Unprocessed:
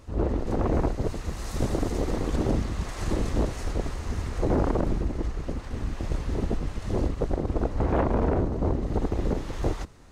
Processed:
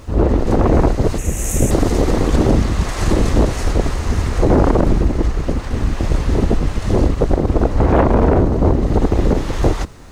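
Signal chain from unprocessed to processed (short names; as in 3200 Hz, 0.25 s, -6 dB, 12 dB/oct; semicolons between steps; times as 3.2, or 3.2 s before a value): 1.18–1.71 EQ curve 560 Hz 0 dB, 1100 Hz -10 dB, 2600 Hz +1 dB, 4600 Hz -15 dB, 6600 Hz +10 dB; in parallel at +2 dB: limiter -17.5 dBFS, peak gain reduction 4 dB; on the sum: bit-crush 11-bit; gain +5.5 dB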